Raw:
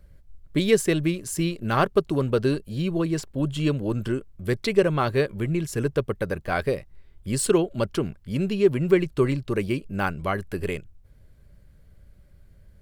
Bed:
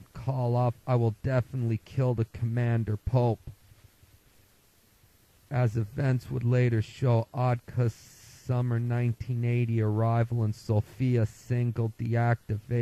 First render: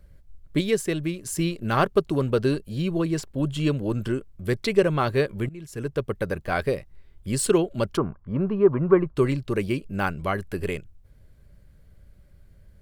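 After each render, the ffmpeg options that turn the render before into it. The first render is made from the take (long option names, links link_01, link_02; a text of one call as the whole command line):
ffmpeg -i in.wav -filter_complex "[0:a]asettb=1/sr,asplit=3[link_01][link_02][link_03];[link_01]atrim=end=7.974[link_04];[link_02]atrim=start=7.97:end=9.16,asetpts=PTS-STARTPTS,afade=type=in:duration=0.004:curve=qsin,afade=type=out:start_time=1.186:duration=0.004:curve=qsin,lowpass=frequency=1100:width_type=q:width=4.1[link_05];[link_03]atrim=start=9.156[link_06];[link_04][link_05]acrossfade=duration=0.004:curve1=hsin:curve2=qsin[link_07];[link_07][link_06]acrossfade=duration=0.004:curve1=qsin:curve2=hsin,asplit=4[link_08][link_09][link_10][link_11];[link_08]atrim=end=0.612[link_12];[link_09]atrim=start=0.608:end=1.252,asetpts=PTS-STARTPTS,volume=-4dB[link_13];[link_10]atrim=start=1.248:end=5.49,asetpts=PTS-STARTPTS,afade=type=out:start_time=4.238:duration=0.004:curve=hsin:silence=0.0891251[link_14];[link_11]atrim=start=5.49,asetpts=PTS-STARTPTS,afade=type=in:duration=0.69:silence=0.0891251[link_15];[link_12][link_13]acrossfade=duration=0.004:curve1=hsin:curve2=hsin[link_16];[link_14][link_15]concat=n=2:v=0:a=1[link_17];[link_16][link_17]acrossfade=duration=0.004:curve1=hsin:curve2=hsin" out.wav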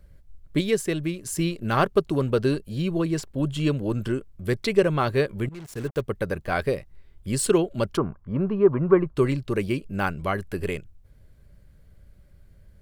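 ffmpeg -i in.wav -filter_complex "[0:a]asplit=3[link_01][link_02][link_03];[link_01]afade=type=out:start_time=5.51:duration=0.02[link_04];[link_02]acrusher=bits=6:mix=0:aa=0.5,afade=type=in:start_time=5.51:duration=0.02,afade=type=out:start_time=6:duration=0.02[link_05];[link_03]afade=type=in:start_time=6:duration=0.02[link_06];[link_04][link_05][link_06]amix=inputs=3:normalize=0" out.wav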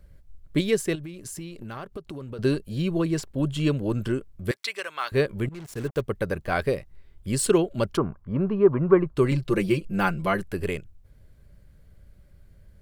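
ffmpeg -i in.wav -filter_complex "[0:a]asettb=1/sr,asplit=3[link_01][link_02][link_03];[link_01]atrim=end=0.954[link_04];[link_02]atrim=start=0.95:end=2.39,asetpts=PTS-STARTPTS,afade=type=in:duration=0.004:curve=qsin,afade=type=out:start_time=1.436:duration=0.004:curve=qsin,acompressor=threshold=-34dB:ratio=6:attack=3.2:release=140:knee=1:detection=peak[link_05];[link_03]atrim=start=2.386[link_06];[link_04][link_05]acrossfade=duration=0.004:curve1=hsin:curve2=qsin[link_07];[link_07][link_06]acrossfade=duration=0.004:curve1=qsin:curve2=hsin,asettb=1/sr,asplit=3[link_08][link_09][link_10];[link_08]atrim=end=4.514[link_11];[link_09]atrim=start=4.51:end=5.12,asetpts=PTS-STARTPTS,afade=type=in:duration=0.004:curve=qsin,afade=type=out:start_time=0.606:duration=0.004:curve=qsin,highpass=1300[link_12];[link_10]atrim=start=5.116[link_13];[link_11][link_12]acrossfade=duration=0.004:curve1=hsin:curve2=qsin[link_14];[link_14][link_13]acrossfade=duration=0.004:curve1=qsin:curve2=hsin,asettb=1/sr,asplit=3[link_15][link_16][link_17];[link_15]atrim=end=9.314[link_18];[link_16]atrim=start=9.31:end=10.43,asetpts=PTS-STARTPTS,afade=type=in:duration=0.004:curve=qsin,afade=type=out:start_time=1.116:duration=0.004:curve=qsin,aecho=1:1:5.8:0.86,atrim=end_sample=49392[link_19];[link_17]atrim=start=10.426[link_20];[link_18][link_19]acrossfade=duration=0.004:curve1=hsin:curve2=qsin[link_21];[link_21][link_20]acrossfade=duration=0.004:curve1=qsin:curve2=hsin" out.wav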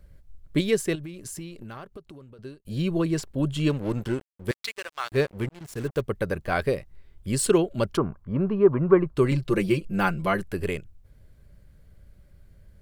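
ffmpeg -i in.wav -filter_complex "[0:a]asettb=1/sr,asplit=3[link_01][link_02][link_03];[link_01]atrim=end=3.694[link_04];[link_02]atrim=start=3.69:end=5.61,asetpts=PTS-STARTPTS,afade=type=in:duration=0.004:curve=qsin,afade=type=out:start_time=1.916:duration=0.004:curve=qsin,aeval=exprs='sgn(val(0))*max(abs(val(0))-0.0119,0)':channel_layout=same[link_05];[link_03]atrim=start=5.606[link_06];[link_04][link_05]acrossfade=duration=0.004:curve1=hsin:curve2=qsin[link_07];[link_07][link_06]acrossfade=duration=0.004:curve1=qsin:curve2=hsin,asplit=2[link_08][link_09];[link_08]atrim=end=2.65,asetpts=PTS-STARTPTS,afade=type=out:start_time=1.35:duration=1.3[link_10];[link_09]atrim=start=2.65,asetpts=PTS-STARTPTS,afade=type=in:duration=0.004:curve=hsin[link_11];[link_10][link_11]concat=n=2:v=0:a=1" out.wav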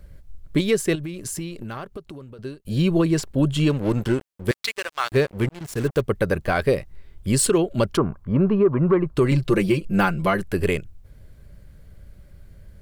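ffmpeg -i in.wav -af "acontrast=78,alimiter=limit=-10dB:level=0:latency=1:release=243" out.wav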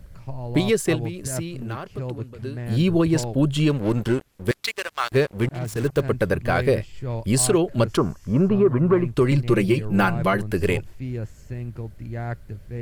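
ffmpeg -i in.wav -i bed.wav -filter_complex "[1:a]volume=-4.5dB[link_01];[0:a][link_01]amix=inputs=2:normalize=0" out.wav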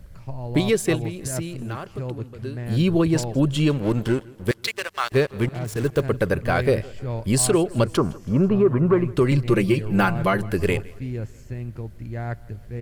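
ffmpeg -i in.wav -af "aecho=1:1:163|326|489|652:0.0708|0.0404|0.023|0.0131" out.wav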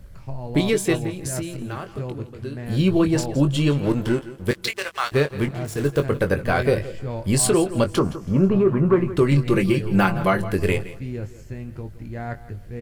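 ffmpeg -i in.wav -filter_complex "[0:a]asplit=2[link_01][link_02];[link_02]adelay=21,volume=-8dB[link_03];[link_01][link_03]amix=inputs=2:normalize=0,aecho=1:1:169:0.158" out.wav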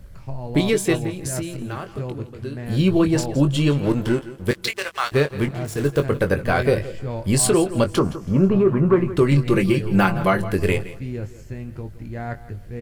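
ffmpeg -i in.wav -af "volume=1dB" out.wav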